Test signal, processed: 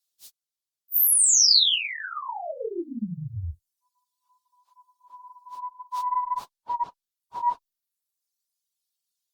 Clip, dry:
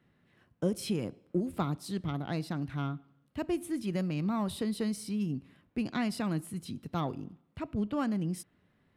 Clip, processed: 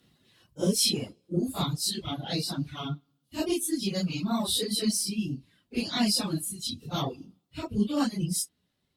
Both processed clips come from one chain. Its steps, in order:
random phases in long frames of 100 ms
high shelf with overshoot 2,800 Hz +12 dB, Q 1.5
harmonic generator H 6 −41 dB, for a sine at −10.5 dBFS
reverb reduction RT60 1.9 s
level +4 dB
Opus 128 kbit/s 48,000 Hz

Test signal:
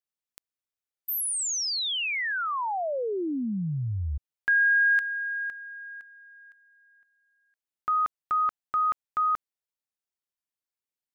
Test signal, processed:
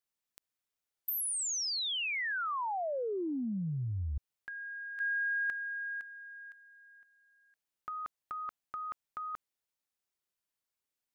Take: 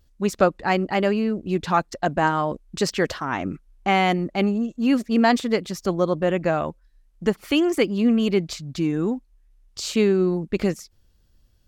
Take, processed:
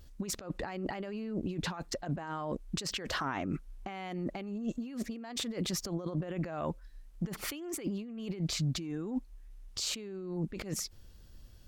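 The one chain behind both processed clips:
compressor whose output falls as the input rises −33 dBFS, ratio −1
brickwall limiter −22 dBFS
level −3 dB

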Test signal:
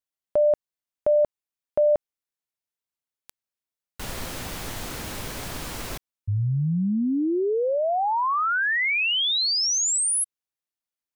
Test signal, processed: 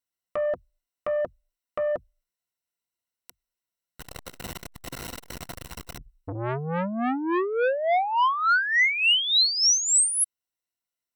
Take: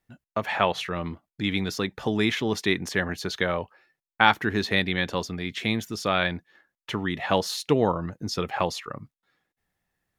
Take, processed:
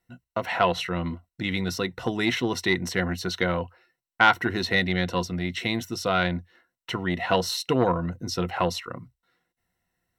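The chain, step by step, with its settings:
EQ curve with evenly spaced ripples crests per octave 2, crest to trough 11 dB
saturating transformer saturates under 910 Hz

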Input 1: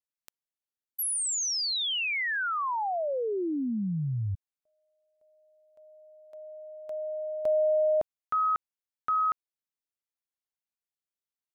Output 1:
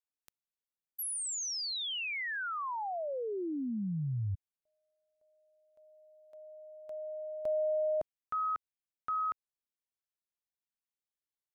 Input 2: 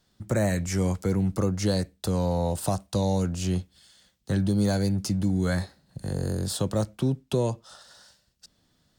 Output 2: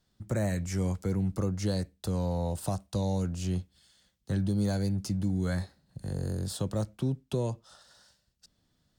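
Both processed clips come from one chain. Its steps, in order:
low-shelf EQ 170 Hz +5 dB
level −7 dB

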